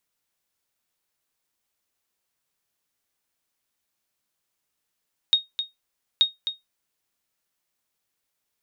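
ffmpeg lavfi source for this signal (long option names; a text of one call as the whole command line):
ffmpeg -f lavfi -i "aevalsrc='0.335*(sin(2*PI*3730*mod(t,0.88))*exp(-6.91*mod(t,0.88)/0.17)+0.335*sin(2*PI*3730*max(mod(t,0.88)-0.26,0))*exp(-6.91*max(mod(t,0.88)-0.26,0)/0.17))':duration=1.76:sample_rate=44100" out.wav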